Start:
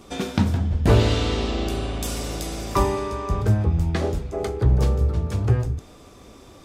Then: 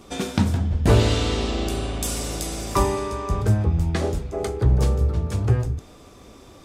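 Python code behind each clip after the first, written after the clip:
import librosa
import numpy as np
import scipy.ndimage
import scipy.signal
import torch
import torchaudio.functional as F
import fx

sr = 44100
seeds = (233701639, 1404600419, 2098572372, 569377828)

y = fx.dynamic_eq(x, sr, hz=8900.0, q=0.97, threshold_db=-51.0, ratio=4.0, max_db=6)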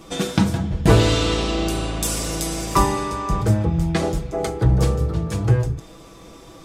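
y = x + 0.6 * np.pad(x, (int(6.1 * sr / 1000.0), 0))[:len(x)]
y = F.gain(torch.from_numpy(y), 2.5).numpy()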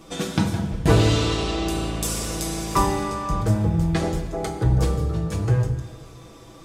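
y = fx.rev_plate(x, sr, seeds[0], rt60_s=1.5, hf_ratio=0.8, predelay_ms=0, drr_db=6.5)
y = F.gain(torch.from_numpy(y), -3.5).numpy()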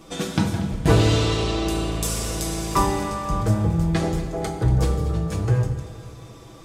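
y = fx.echo_feedback(x, sr, ms=236, feedback_pct=59, wet_db=-16)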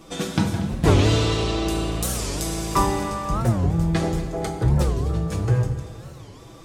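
y = fx.record_warp(x, sr, rpm=45.0, depth_cents=250.0)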